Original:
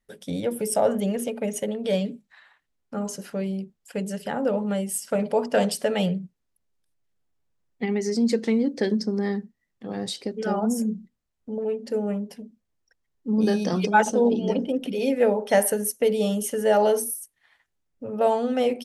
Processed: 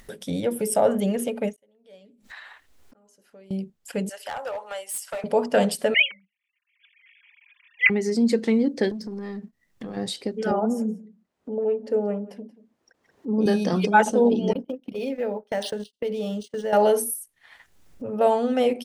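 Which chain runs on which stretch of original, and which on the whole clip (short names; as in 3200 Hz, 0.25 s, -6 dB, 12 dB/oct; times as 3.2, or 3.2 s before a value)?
1.56–3.51 bell 170 Hz -13.5 dB 0.5 oct + flipped gate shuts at -33 dBFS, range -36 dB
4.09–5.24 HPF 660 Hz 24 dB/oct + hard clip -28 dBFS
5.94–7.9 sine-wave speech + resonant high-pass 2300 Hz, resonance Q 8 + comb 4.9 ms, depth 77%
8.91–9.97 compressor 5:1, threshold -35 dBFS + sample leveller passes 1
10.51–13.46 HPF 420 Hz + tilt -4 dB/oct + echo 0.18 s -21.5 dB
14.53–16.73 gate -28 dBFS, range -28 dB + compressor 2.5:1, threshold -29 dBFS + decimation joined by straight lines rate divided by 3×
whole clip: dynamic EQ 5800 Hz, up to -5 dB, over -48 dBFS, Q 2.4; upward compressor, threshold -34 dBFS; ending taper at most 450 dB/s; gain +1.5 dB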